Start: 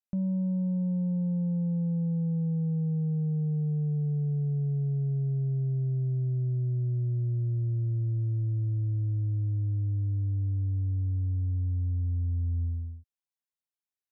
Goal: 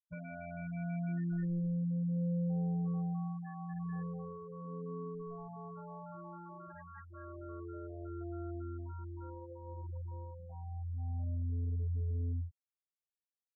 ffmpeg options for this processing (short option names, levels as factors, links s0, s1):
-af "adynamicequalizer=threshold=0.00708:dfrequency=160:dqfactor=6.2:tfrequency=160:tqfactor=6.2:attack=5:release=100:ratio=0.375:range=2.5:mode=cutabove:tftype=bell,asetrate=45938,aresample=44100,acrusher=samples=35:mix=1:aa=0.000001,acontrast=36,asoftclip=type=hard:threshold=0.0251,afftfilt=real='hypot(re,im)*cos(PI*b)':imag='0':win_size=2048:overlap=0.75,flanger=delay=1.7:depth=5.3:regen=-34:speed=0.25:shape=triangular,aecho=1:1:969:0.0668,afftfilt=real='re*gte(hypot(re,im),0.0158)':imag='im*gte(hypot(re,im),0.0158)':win_size=1024:overlap=0.75,volume=1.26"